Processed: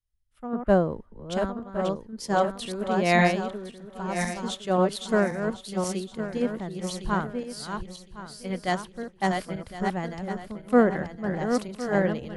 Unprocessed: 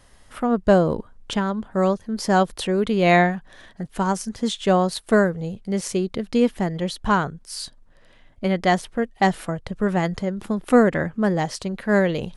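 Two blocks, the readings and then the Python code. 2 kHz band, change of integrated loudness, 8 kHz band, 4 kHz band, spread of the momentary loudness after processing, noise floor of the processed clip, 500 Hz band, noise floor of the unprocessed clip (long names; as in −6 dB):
−4.5 dB, −5.5 dB, −4.5 dB, −5.0 dB, 14 LU, −54 dBFS, −5.0 dB, −52 dBFS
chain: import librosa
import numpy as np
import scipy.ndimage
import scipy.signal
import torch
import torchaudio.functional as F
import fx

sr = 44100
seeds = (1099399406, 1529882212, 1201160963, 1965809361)

y = fx.reverse_delay_fb(x, sr, ms=531, feedback_pct=61, wet_db=-3)
y = fx.band_widen(y, sr, depth_pct=100)
y = y * 10.0 ** (-8.5 / 20.0)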